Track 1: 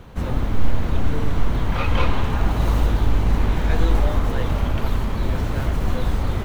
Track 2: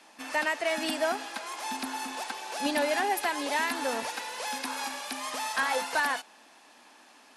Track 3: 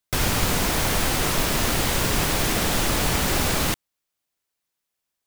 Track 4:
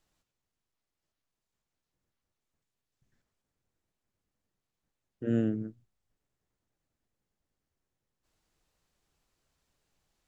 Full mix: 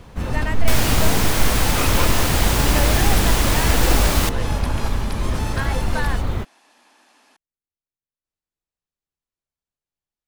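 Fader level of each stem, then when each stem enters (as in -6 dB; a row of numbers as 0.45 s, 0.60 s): -0.5 dB, -0.5 dB, +1.5 dB, -17.0 dB; 0.00 s, 0.00 s, 0.55 s, 0.00 s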